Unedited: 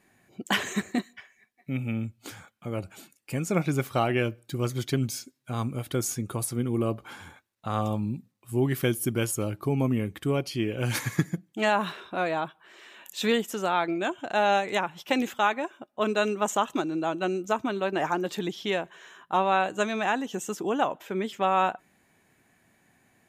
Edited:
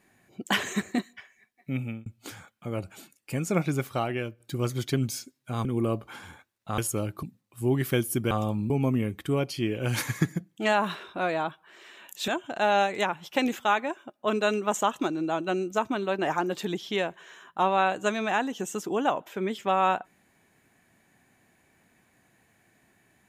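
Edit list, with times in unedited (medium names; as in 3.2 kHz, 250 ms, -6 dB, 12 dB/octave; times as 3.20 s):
1.80–2.06 s: fade out
3.57–4.40 s: fade out, to -9 dB
5.65–6.62 s: delete
7.75–8.14 s: swap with 9.22–9.67 s
13.25–14.02 s: delete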